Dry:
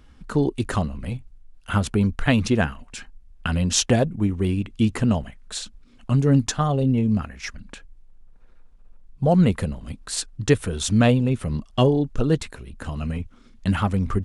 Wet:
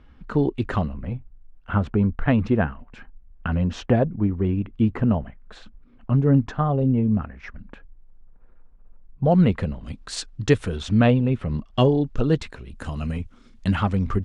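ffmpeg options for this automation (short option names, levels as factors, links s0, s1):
-af "asetnsamples=n=441:p=0,asendcmd='0.94 lowpass f 1600;9.25 lowpass f 3300;9.84 lowpass f 5700;10.77 lowpass f 2900;11.74 lowpass f 4900;12.7 lowpass f 9700;13.68 lowpass f 5300',lowpass=2900"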